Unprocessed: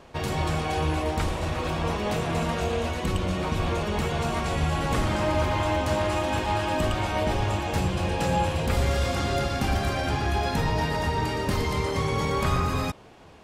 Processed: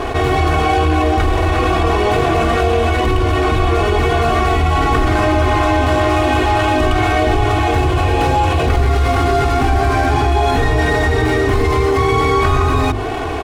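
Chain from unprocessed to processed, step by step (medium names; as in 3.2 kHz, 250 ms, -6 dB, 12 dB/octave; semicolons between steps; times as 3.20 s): median filter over 9 samples; treble shelf 11 kHz -10 dB; hum notches 50/100/150/200/250/300/350 Hz; comb 2.7 ms, depth 99%; level flattener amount 70%; trim +5.5 dB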